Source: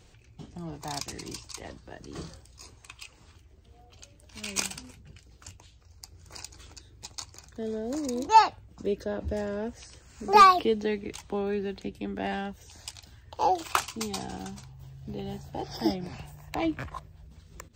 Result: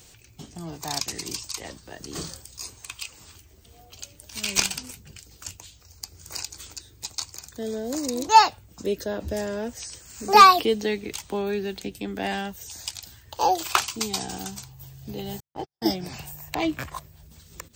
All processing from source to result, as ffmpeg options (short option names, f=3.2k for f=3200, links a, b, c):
-filter_complex "[0:a]asettb=1/sr,asplit=3[a][b][c];[a]atrim=end=1.994[d];[b]atrim=start=1.99:end=6.43,asetpts=PTS-STARTPTS,afade=t=in:d=0.004:c=qsin,afade=t=out:st=4.436:d=0.004:c=qsin,aeval=exprs='(tanh(7.94*val(0)+0.75)-tanh(0.75))/7.94':c=same,acontrast=56[e];[c]atrim=start=6.426[f];[d][e]acrossfade=d=0.004:c1=hsin:c2=qsin[g];[g][f]acrossfade=d=0.004:c1=qsin:c2=hsin,asettb=1/sr,asplit=3[h][i][j];[h]atrim=end=15.404[k];[i]atrim=start=15.4:end=15.86,asetpts=PTS-STARTPTS,afade=t=in:d=0.004:c=qsin,afade=t=out:st=0.456:d=0.004:c=qsin,lowpass=f=2.3k:p=1,agate=range=-58dB:threshold=-35dB:ratio=16:release=100:detection=peak[l];[j]atrim=start=15.856[m];[k][l]acrossfade=d=0.004:c1=hsin:c2=qsin[n];[n][m]acrossfade=d=0.004:c1=qsin:c2=hsin,aemphasis=mode=production:type=75fm,acrossover=split=5700[o][p];[p]acompressor=threshold=-37dB:ratio=4:attack=1:release=60[q];[o][q]amix=inputs=2:normalize=0,lowshelf=f=69:g=-6.5,volume=3.5dB"